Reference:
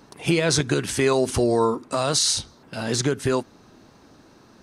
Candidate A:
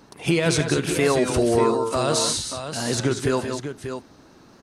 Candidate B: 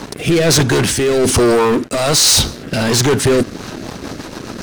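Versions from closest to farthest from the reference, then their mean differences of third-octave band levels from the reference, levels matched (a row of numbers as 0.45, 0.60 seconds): A, B; 6.0, 9.0 decibels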